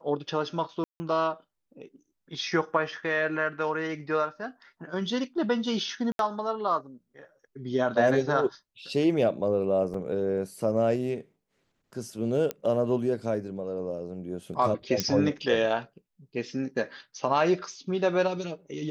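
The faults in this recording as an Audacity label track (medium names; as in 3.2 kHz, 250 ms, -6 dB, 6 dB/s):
0.840000	1.000000	dropout 160 ms
6.120000	6.190000	dropout 72 ms
9.940000	9.940000	dropout 3.9 ms
12.510000	12.510000	pop -15 dBFS
15.000000	15.000000	pop -10 dBFS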